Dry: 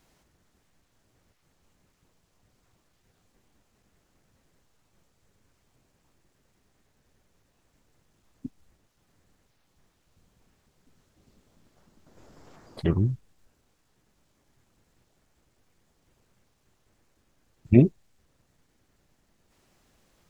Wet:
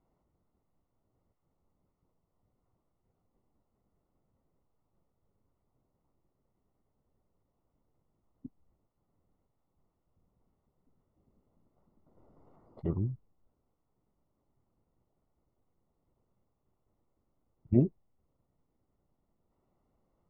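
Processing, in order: polynomial smoothing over 65 samples; gain -8.5 dB

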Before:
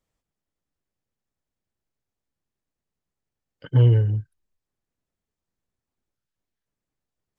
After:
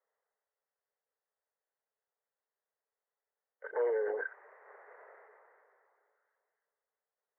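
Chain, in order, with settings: Chebyshev band-pass 420–2000 Hz, order 5; sustainer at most 22 dB/s

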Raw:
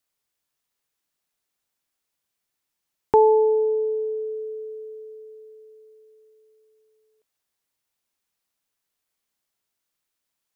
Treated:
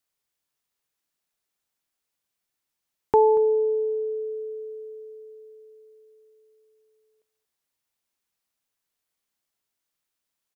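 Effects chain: echo 0.234 s -17.5 dB; gain -2 dB

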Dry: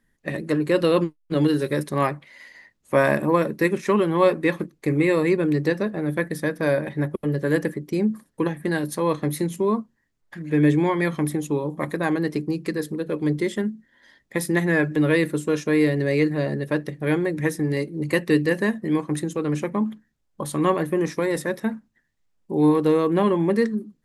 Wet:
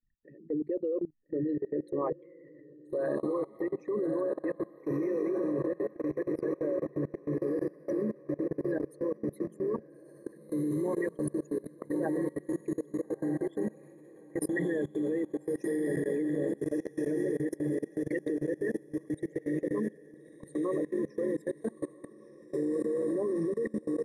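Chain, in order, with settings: formant sharpening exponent 3; diffused feedback echo 1.331 s, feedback 70%, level -5 dB; level quantiser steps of 23 dB; gain -7 dB

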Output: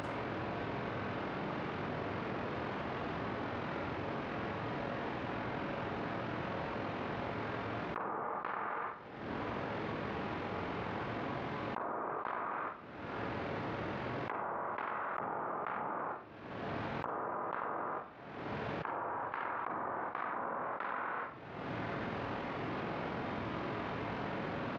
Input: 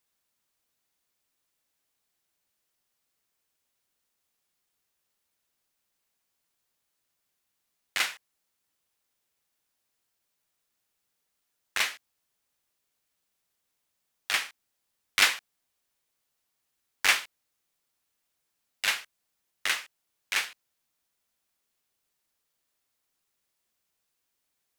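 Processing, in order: tape spacing loss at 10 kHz 44 dB; tapped delay 96/489/569 ms -6.5/-16.5/-8.5 dB; upward compressor, threshold -57 dBFS; treble ducked by the level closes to 1500 Hz, closed at -38 dBFS; doubler 49 ms -13 dB; Schroeder reverb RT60 0.44 s, combs from 33 ms, DRR -1.5 dB; pitch shift -9 st; HPF 100 Hz 12 dB/oct; fast leveller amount 100%; gain -8 dB

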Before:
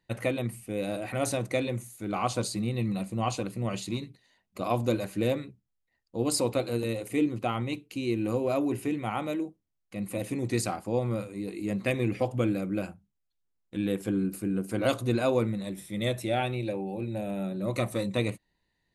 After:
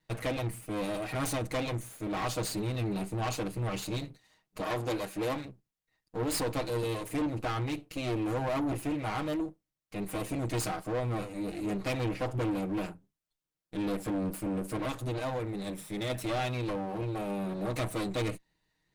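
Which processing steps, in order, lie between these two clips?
minimum comb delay 6.4 ms; 4.61–5.45 low shelf 190 Hz -9.5 dB; 14.76–16.1 compressor 4:1, threshold -31 dBFS, peak gain reduction 9 dB; soft clip -28.5 dBFS, distortion -10 dB; gain +1.5 dB

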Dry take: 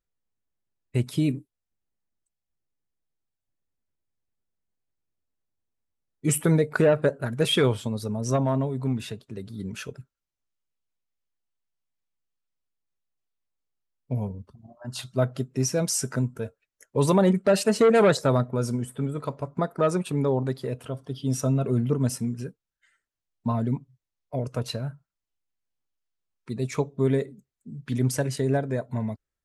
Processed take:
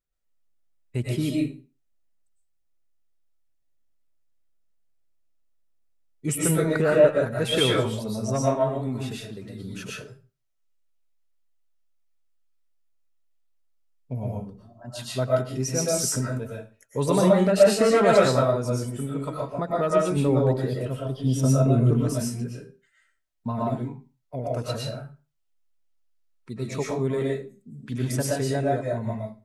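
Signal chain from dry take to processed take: 20.16–21.91 low shelf 370 Hz +7 dB; reverb RT60 0.35 s, pre-delay 80 ms, DRR -4.5 dB; gain -3.5 dB

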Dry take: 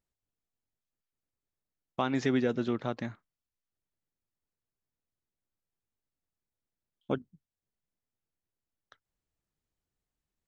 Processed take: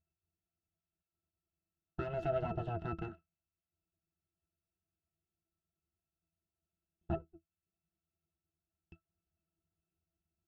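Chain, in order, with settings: full-wave rectifier; limiter -21.5 dBFS, peak gain reduction 6 dB; octave resonator E, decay 0.1 s; gain +11 dB

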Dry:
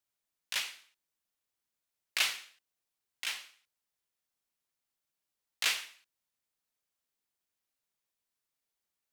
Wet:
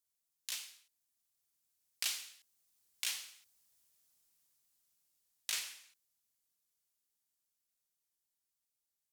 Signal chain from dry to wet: Doppler pass-by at 3.59, 24 m/s, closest 21 m; tone controls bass +5 dB, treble +12 dB; compressor 2:1, threshold -46 dBFS, peak gain reduction 11.5 dB; gain +4 dB

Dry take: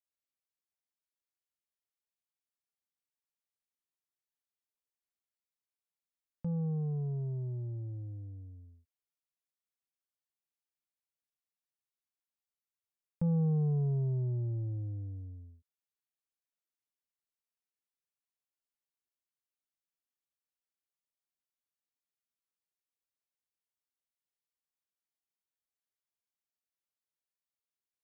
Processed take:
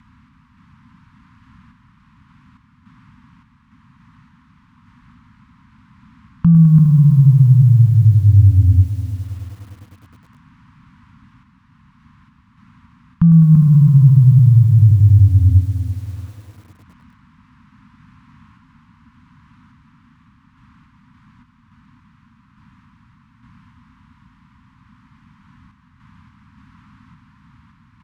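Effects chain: HPF 53 Hz 12 dB/oct; upward compressor, threshold -33 dBFS; low-pass opened by the level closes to 500 Hz, open at -25 dBFS; in parallel at -3 dB: compressor 10:1, threshold -34 dBFS, peak gain reduction 7.5 dB; on the sum: feedback echo 0.337 s, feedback 27%, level -5 dB; on a send at -19.5 dB: reverb RT60 0.60 s, pre-delay 67 ms; on the sum: dynamic EQ 700 Hz, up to -8 dB, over -57 dBFS, Q 1.6; random-step tremolo; Chebyshev band-stop 250–1000 Hz, order 4; maximiser +31.5 dB; lo-fi delay 0.103 s, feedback 80%, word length 6-bit, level -13 dB; gain -4 dB

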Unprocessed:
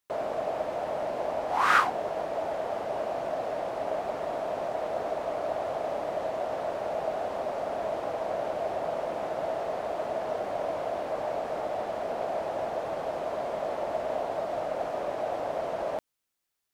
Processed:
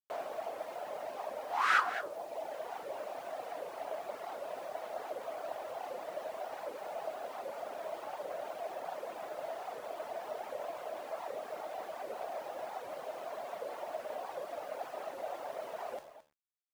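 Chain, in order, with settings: weighting filter A; reverb removal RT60 1.4 s; low shelf 120 Hz +7.5 dB; de-hum 76.28 Hz, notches 24; vibrato 1.9 Hz 54 cents; bit-crush 9-bit; on a send: echo 0.217 s -13 dB; on the sum: record warp 78 rpm, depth 250 cents; gain -5 dB

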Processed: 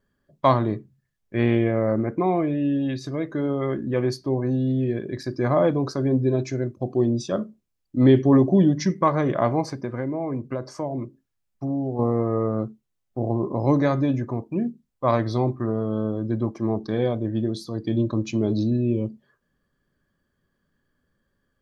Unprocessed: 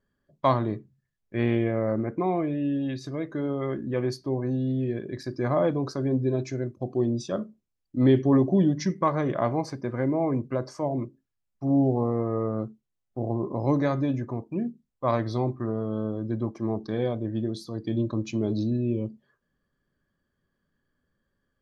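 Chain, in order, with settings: 9.72–11.99 compressor 3:1, threshold -30 dBFS, peak gain reduction 9.5 dB; gain +4 dB

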